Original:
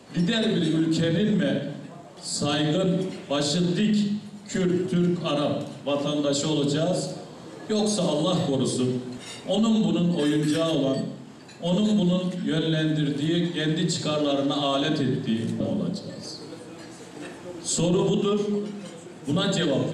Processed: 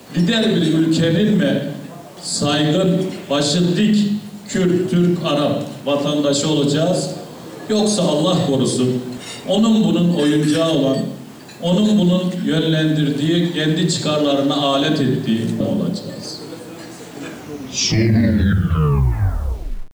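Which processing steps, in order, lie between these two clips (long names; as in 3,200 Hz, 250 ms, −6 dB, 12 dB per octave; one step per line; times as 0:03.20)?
turntable brake at the end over 2.90 s
bit reduction 9 bits
level +7.5 dB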